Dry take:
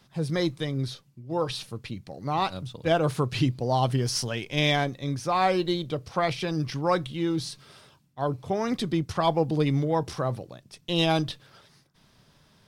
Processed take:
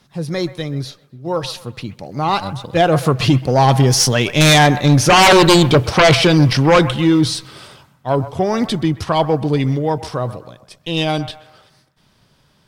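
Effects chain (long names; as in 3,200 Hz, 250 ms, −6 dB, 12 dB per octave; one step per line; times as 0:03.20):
source passing by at 0:05.51, 13 m/s, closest 8.5 metres
sine wavefolder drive 13 dB, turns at −12 dBFS
delay with a band-pass on its return 129 ms, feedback 39%, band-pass 1,100 Hz, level −13 dB
level +6.5 dB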